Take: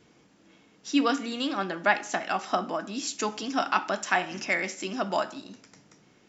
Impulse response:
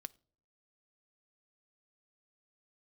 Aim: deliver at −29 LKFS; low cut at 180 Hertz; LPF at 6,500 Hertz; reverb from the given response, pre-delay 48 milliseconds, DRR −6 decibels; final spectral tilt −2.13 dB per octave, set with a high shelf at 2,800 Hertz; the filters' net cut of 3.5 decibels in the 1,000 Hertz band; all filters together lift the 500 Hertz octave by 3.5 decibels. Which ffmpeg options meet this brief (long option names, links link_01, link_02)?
-filter_complex "[0:a]highpass=180,lowpass=6500,equalizer=frequency=500:width_type=o:gain=8,equalizer=frequency=1000:width_type=o:gain=-8.5,highshelf=frequency=2800:gain=-3,asplit=2[link_01][link_02];[1:a]atrim=start_sample=2205,adelay=48[link_03];[link_02][link_03]afir=irnorm=-1:irlink=0,volume=11dB[link_04];[link_01][link_04]amix=inputs=2:normalize=0,volume=-7dB"